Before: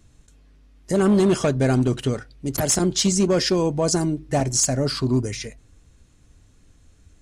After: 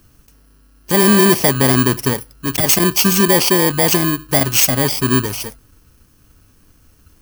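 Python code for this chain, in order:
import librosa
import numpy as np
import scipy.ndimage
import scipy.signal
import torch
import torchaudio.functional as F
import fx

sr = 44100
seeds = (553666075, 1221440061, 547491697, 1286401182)

y = fx.bit_reversed(x, sr, seeds[0], block=32)
y = fx.low_shelf(y, sr, hz=150.0, db=-7.0)
y = y * 10.0 ** (7.5 / 20.0)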